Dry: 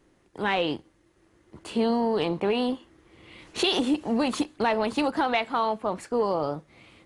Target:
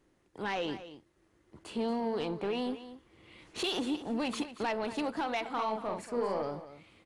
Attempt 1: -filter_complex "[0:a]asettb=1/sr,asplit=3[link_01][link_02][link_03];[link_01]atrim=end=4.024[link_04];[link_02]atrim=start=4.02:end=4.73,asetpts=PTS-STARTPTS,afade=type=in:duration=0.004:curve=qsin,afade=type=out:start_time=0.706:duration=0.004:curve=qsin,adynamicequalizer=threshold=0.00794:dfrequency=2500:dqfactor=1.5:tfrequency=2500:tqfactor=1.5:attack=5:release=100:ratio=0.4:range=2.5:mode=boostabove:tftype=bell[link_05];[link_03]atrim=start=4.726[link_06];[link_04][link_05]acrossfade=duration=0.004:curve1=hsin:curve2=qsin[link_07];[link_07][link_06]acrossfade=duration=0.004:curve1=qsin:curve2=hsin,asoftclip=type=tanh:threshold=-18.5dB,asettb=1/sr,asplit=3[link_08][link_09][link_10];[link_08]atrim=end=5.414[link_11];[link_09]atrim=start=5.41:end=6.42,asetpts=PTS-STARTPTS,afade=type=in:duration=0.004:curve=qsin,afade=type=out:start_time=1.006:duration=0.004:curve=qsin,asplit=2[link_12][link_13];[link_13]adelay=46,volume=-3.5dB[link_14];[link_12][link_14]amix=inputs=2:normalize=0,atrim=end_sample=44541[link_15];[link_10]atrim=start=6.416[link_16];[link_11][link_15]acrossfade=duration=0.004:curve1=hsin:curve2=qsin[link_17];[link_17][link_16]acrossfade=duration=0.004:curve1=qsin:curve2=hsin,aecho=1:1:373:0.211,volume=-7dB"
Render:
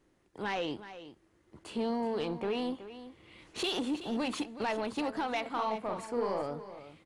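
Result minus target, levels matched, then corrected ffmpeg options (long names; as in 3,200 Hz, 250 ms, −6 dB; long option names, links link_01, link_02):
echo 141 ms late
-filter_complex "[0:a]asettb=1/sr,asplit=3[link_01][link_02][link_03];[link_01]atrim=end=4.024[link_04];[link_02]atrim=start=4.02:end=4.73,asetpts=PTS-STARTPTS,afade=type=in:duration=0.004:curve=qsin,afade=type=out:start_time=0.706:duration=0.004:curve=qsin,adynamicequalizer=threshold=0.00794:dfrequency=2500:dqfactor=1.5:tfrequency=2500:tqfactor=1.5:attack=5:release=100:ratio=0.4:range=2.5:mode=boostabove:tftype=bell[link_05];[link_03]atrim=start=4.726[link_06];[link_04][link_05]acrossfade=duration=0.004:curve1=hsin:curve2=qsin[link_07];[link_07][link_06]acrossfade=duration=0.004:curve1=qsin:curve2=hsin,asoftclip=type=tanh:threshold=-18.5dB,asettb=1/sr,asplit=3[link_08][link_09][link_10];[link_08]atrim=end=5.414[link_11];[link_09]atrim=start=5.41:end=6.42,asetpts=PTS-STARTPTS,afade=type=in:duration=0.004:curve=qsin,afade=type=out:start_time=1.006:duration=0.004:curve=qsin,asplit=2[link_12][link_13];[link_13]adelay=46,volume=-3.5dB[link_14];[link_12][link_14]amix=inputs=2:normalize=0,atrim=end_sample=44541[link_15];[link_10]atrim=start=6.416[link_16];[link_11][link_15]acrossfade=duration=0.004:curve1=hsin:curve2=qsin[link_17];[link_17][link_16]acrossfade=duration=0.004:curve1=qsin:curve2=hsin,aecho=1:1:232:0.211,volume=-7dB"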